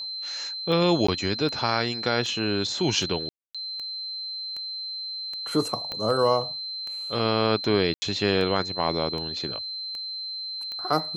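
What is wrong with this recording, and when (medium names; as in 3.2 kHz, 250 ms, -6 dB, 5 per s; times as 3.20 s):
tick 78 rpm -23 dBFS
whine 4.1 kHz -31 dBFS
1.07–1.08 s: dropout 14 ms
3.29–3.55 s: dropout 256 ms
5.92 s: pop -18 dBFS
7.94–8.02 s: dropout 80 ms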